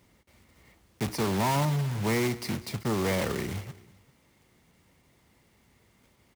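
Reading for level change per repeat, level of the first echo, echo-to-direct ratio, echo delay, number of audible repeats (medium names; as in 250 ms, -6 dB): -5.5 dB, -19.5 dB, -18.5 dB, 196 ms, 2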